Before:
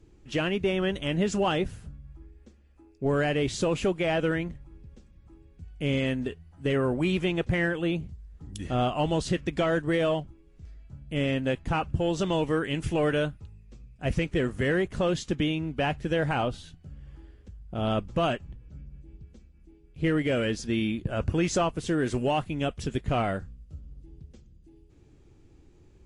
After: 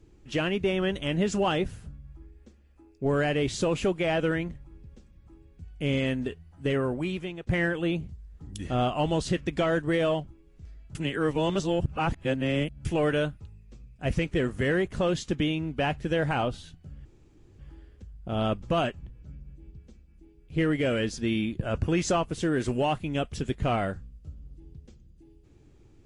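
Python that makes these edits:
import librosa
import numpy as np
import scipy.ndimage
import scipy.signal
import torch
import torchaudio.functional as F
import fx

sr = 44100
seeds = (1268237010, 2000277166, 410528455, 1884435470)

y = fx.edit(x, sr, fx.fade_out_to(start_s=6.65, length_s=0.82, floor_db=-15.0),
    fx.reverse_span(start_s=10.95, length_s=1.9),
    fx.insert_room_tone(at_s=17.05, length_s=0.54), tone=tone)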